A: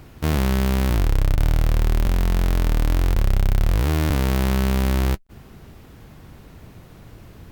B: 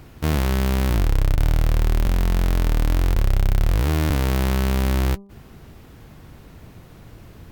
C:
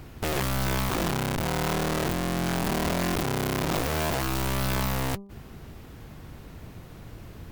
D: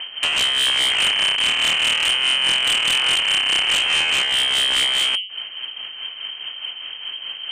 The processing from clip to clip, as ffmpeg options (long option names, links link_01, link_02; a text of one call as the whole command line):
ffmpeg -i in.wav -af "bandreject=frequency=198.7:width_type=h:width=4,bandreject=frequency=397.4:width_type=h:width=4,bandreject=frequency=596.1:width_type=h:width=4,bandreject=frequency=794.8:width_type=h:width=4,bandreject=frequency=993.5:width_type=h:width=4,bandreject=frequency=1192.2:width_type=h:width=4" out.wav
ffmpeg -i in.wav -af "aeval=exprs='(mod(12.6*val(0)+1,2)-1)/12.6':channel_layout=same" out.wav
ffmpeg -i in.wav -af "tremolo=f=4.8:d=0.51,lowpass=frequency=2700:width_type=q:width=0.5098,lowpass=frequency=2700:width_type=q:width=0.6013,lowpass=frequency=2700:width_type=q:width=0.9,lowpass=frequency=2700:width_type=q:width=2.563,afreqshift=-3200,aeval=exprs='0.188*sin(PI/2*3.16*val(0)/0.188)':channel_layout=same" out.wav